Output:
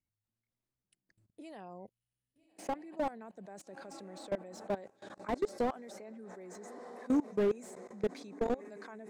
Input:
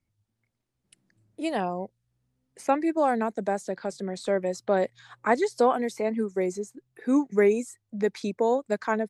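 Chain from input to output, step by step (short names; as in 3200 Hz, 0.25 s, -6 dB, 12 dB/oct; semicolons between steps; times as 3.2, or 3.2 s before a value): diffused feedback echo 1.288 s, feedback 43%, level -14.5 dB; level quantiser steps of 22 dB; slew limiter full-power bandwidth 34 Hz; gain -4 dB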